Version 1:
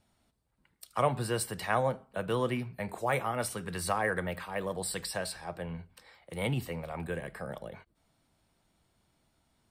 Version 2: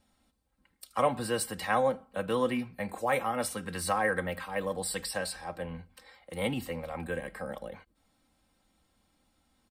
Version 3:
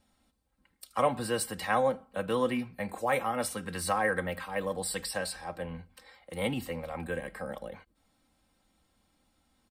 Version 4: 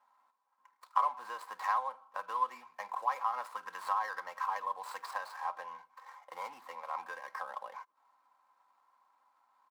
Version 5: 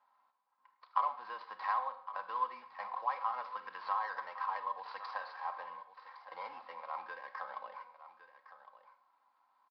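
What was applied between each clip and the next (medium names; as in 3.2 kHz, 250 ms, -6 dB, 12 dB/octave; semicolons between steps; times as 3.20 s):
comb 3.8 ms, depth 60%
no audible change
median filter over 15 samples; compression 4:1, threshold -39 dBFS, peak gain reduction 15 dB; resonant high-pass 1 kHz, resonance Q 8.4
delay 1110 ms -14 dB; reverberation RT60 0.60 s, pre-delay 31 ms, DRR 10.5 dB; resampled via 11.025 kHz; trim -2.5 dB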